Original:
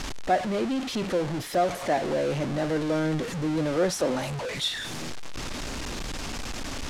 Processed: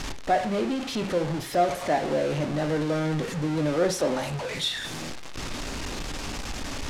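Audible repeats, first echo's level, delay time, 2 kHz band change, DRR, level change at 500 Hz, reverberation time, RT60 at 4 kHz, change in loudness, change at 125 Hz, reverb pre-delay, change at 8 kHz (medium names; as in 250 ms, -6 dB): no echo, no echo, no echo, +0.5 dB, 7.0 dB, +0.5 dB, 0.40 s, 0.40 s, +0.5 dB, +1.5 dB, 6 ms, 0.0 dB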